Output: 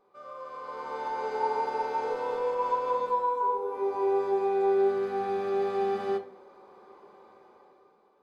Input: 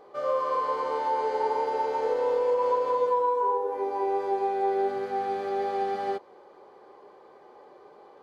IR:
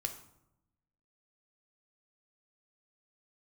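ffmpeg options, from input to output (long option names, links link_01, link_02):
-filter_complex "[0:a]dynaudnorm=framelen=130:gausssize=13:maxgain=13dB[link_01];[1:a]atrim=start_sample=2205,asetrate=79380,aresample=44100[link_02];[link_01][link_02]afir=irnorm=-1:irlink=0,volume=-8.5dB"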